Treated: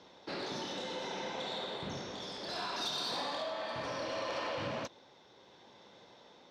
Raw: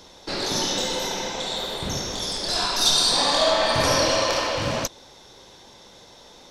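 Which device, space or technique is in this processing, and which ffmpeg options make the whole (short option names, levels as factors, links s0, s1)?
AM radio: -af "highpass=130,lowpass=3300,acompressor=threshold=0.0631:ratio=10,asoftclip=type=tanh:threshold=0.1,tremolo=f=0.67:d=0.27,volume=0.422"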